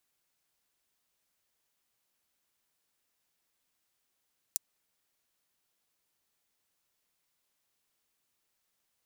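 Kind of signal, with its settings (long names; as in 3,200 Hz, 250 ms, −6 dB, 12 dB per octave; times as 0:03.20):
closed synth hi-hat, high-pass 6,300 Hz, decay 0.02 s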